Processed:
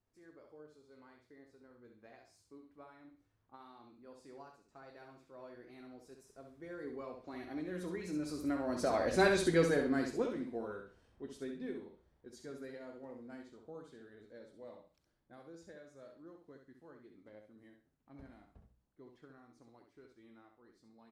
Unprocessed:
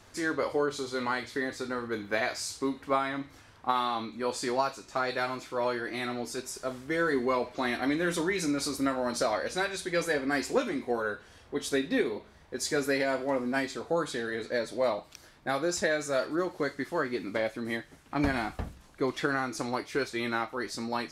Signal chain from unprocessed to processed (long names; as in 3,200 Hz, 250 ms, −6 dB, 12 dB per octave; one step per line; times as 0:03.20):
source passing by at 0:09.33, 14 m/s, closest 2.4 metres
tilt shelving filter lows +6 dB, about 710 Hz
on a send: repeating echo 66 ms, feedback 25%, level −6 dB
on the sum: level +3.5 dB